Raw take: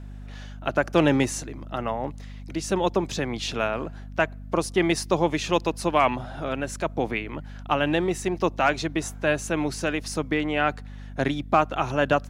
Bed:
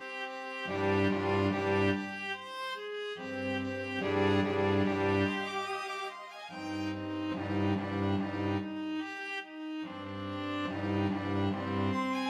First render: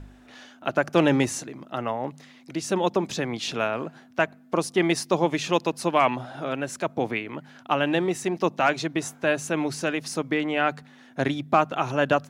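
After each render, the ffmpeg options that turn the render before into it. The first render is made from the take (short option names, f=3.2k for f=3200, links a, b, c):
-af "bandreject=f=50:t=h:w=4,bandreject=f=100:t=h:w=4,bandreject=f=150:t=h:w=4,bandreject=f=200:t=h:w=4"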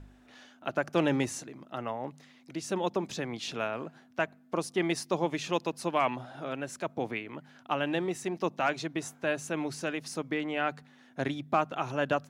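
-af "volume=-7dB"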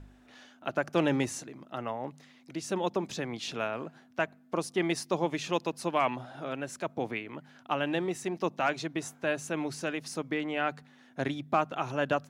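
-af anull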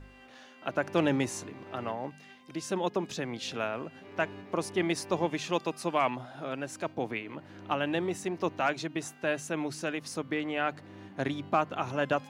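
-filter_complex "[1:a]volume=-17.5dB[a];[0:a][a]amix=inputs=2:normalize=0"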